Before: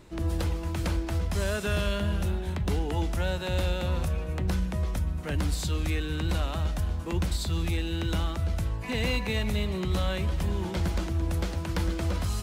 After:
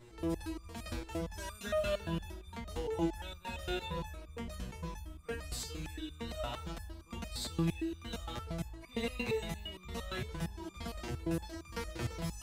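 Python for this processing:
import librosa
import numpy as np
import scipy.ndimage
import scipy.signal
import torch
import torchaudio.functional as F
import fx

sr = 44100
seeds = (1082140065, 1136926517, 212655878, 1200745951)

y = fx.resonator_held(x, sr, hz=8.7, low_hz=120.0, high_hz=1200.0)
y = y * 10.0 ** (6.5 / 20.0)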